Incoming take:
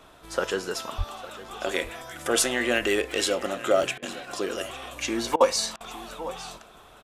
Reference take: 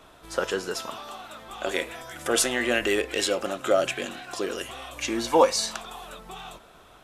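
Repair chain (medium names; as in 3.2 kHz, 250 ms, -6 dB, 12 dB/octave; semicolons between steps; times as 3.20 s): 0.97–1.09 s: high-pass 140 Hz 24 dB/octave; interpolate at 1.44/2.77/3.11/3.83/4.65/5.33/6.14 s, 1.5 ms; interpolate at 3.98/5.36/5.76 s, 44 ms; inverse comb 856 ms -16.5 dB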